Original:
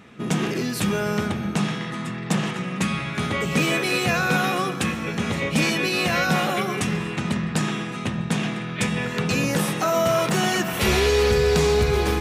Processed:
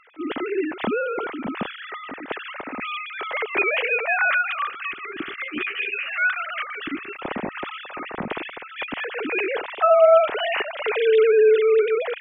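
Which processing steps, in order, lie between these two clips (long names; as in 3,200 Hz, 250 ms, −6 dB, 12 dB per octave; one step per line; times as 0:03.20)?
three sine waves on the formant tracks
0:04.30–0:07.16: gain on a spectral selection 420–1,100 Hz −17 dB
0:05.44–0:06.18: string-ensemble chorus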